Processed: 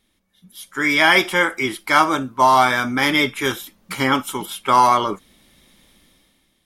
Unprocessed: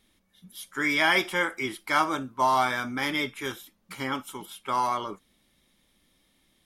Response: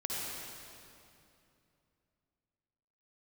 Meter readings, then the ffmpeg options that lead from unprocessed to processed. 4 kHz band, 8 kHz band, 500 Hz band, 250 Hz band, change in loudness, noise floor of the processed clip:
+9.5 dB, +10.0 dB, +9.5 dB, +10.0 dB, +9.5 dB, -66 dBFS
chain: -af "dynaudnorm=f=130:g=11:m=14dB"

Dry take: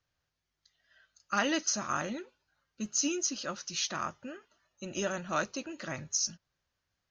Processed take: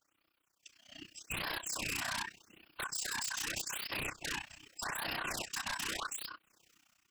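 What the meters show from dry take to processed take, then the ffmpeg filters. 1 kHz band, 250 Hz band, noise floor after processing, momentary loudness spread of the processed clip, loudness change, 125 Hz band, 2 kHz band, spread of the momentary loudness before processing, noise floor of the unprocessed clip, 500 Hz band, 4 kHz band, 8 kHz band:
-5.5 dB, -14.0 dB, -79 dBFS, 13 LU, -5.0 dB, -6.0 dB, 0.0 dB, 14 LU, -85 dBFS, -12.0 dB, -1.5 dB, -7.0 dB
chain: -af "highpass=83,aeval=exprs='val(0)*sin(2*PI*1300*n/s)':c=same,highshelf=f=3.7k:g=9,acompressor=threshold=-40dB:ratio=8,alimiter=level_in=11.5dB:limit=-24dB:level=0:latency=1:release=50,volume=-11.5dB,dynaudnorm=f=610:g=3:m=11.5dB,afftfilt=real='hypot(re,im)*cos(2*PI*random(0))':imag='hypot(re,im)*sin(2*PI*random(1))':win_size=512:overlap=0.75,tremolo=f=31:d=0.919,equalizer=f=315:t=o:w=0.33:g=8,equalizer=f=2.5k:t=o:w=0.33:g=5,equalizer=f=4k:t=o:w=0.33:g=-6,aeval=exprs='0.0224*sin(PI/2*3.55*val(0)/0.0224)':c=same,afftfilt=real='re*(1-between(b*sr/1024,390*pow(7700/390,0.5+0.5*sin(2*PI*0.83*pts/sr))/1.41,390*pow(7700/390,0.5+0.5*sin(2*PI*0.83*pts/sr))*1.41))':imag='im*(1-between(b*sr/1024,390*pow(7700/390,0.5+0.5*sin(2*PI*0.83*pts/sr))/1.41,390*pow(7700/390,0.5+0.5*sin(2*PI*0.83*pts/sr))*1.41))':win_size=1024:overlap=0.75"

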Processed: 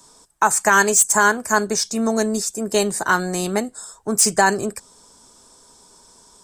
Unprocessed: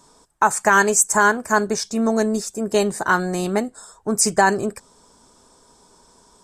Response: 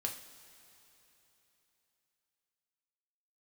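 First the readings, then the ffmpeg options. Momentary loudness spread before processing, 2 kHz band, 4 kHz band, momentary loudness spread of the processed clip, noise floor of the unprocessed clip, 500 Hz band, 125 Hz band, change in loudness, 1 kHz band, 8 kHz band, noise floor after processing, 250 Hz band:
10 LU, +0.5 dB, +3.5 dB, 11 LU, -55 dBFS, -1.0 dB, -1.0 dB, +1.0 dB, -0.5 dB, +3.0 dB, -52 dBFS, -1.0 dB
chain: -filter_complex "[0:a]highshelf=f=3.2k:g=8.5,acrossover=split=140|990|1900[a][b][c][d];[d]asoftclip=type=tanh:threshold=-8dB[e];[a][b][c][e]amix=inputs=4:normalize=0,volume=-1dB"

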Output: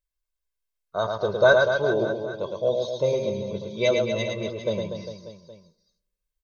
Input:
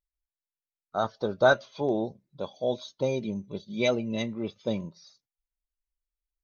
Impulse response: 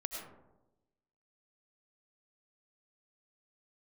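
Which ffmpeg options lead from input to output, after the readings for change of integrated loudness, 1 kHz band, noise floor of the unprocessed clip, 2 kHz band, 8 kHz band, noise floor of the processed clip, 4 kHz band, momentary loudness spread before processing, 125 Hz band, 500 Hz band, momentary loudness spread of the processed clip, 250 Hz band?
+5.0 dB, +1.0 dB, under -85 dBFS, +6.0 dB, n/a, -84 dBFS, +4.5 dB, 14 LU, +4.0 dB, +6.0 dB, 15 LU, -1.0 dB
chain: -filter_complex "[0:a]aecho=1:1:1.9:0.67,aecho=1:1:110|242|400.4|590.5|818.6:0.631|0.398|0.251|0.158|0.1,asplit=2[a][b];[1:a]atrim=start_sample=2205,asetrate=52920,aresample=44100[c];[b][c]afir=irnorm=-1:irlink=0,volume=-17dB[d];[a][d]amix=inputs=2:normalize=0"

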